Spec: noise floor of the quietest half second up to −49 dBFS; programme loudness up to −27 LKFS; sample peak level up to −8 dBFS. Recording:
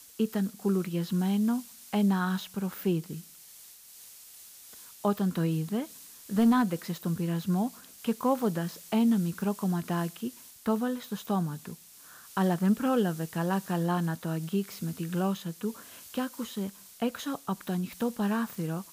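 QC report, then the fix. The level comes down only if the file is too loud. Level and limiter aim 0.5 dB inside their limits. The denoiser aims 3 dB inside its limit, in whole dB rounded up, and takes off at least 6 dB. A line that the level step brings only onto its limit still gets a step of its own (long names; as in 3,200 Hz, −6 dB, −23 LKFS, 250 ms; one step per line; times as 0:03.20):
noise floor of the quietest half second −52 dBFS: in spec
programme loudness −30.5 LKFS: in spec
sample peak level −16.0 dBFS: in spec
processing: no processing needed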